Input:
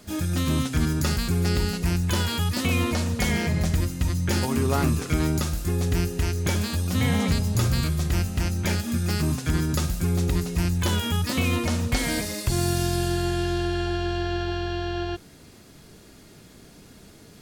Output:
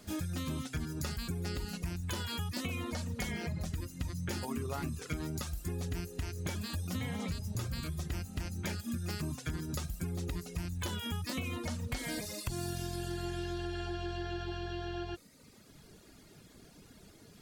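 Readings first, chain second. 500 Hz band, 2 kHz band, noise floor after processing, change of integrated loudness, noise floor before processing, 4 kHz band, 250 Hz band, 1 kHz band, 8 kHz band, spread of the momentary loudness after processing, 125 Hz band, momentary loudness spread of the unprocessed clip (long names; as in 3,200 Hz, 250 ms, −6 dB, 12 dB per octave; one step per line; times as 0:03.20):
−13.0 dB, −12.5 dB, −58 dBFS, −13.0 dB, −49 dBFS, −12.0 dB, −13.0 dB, −12.5 dB, −12.5 dB, 13 LU, −13.5 dB, 3 LU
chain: reverb reduction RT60 0.93 s
downward compressor, threshold −28 dBFS, peak gain reduction 10 dB
level −5.5 dB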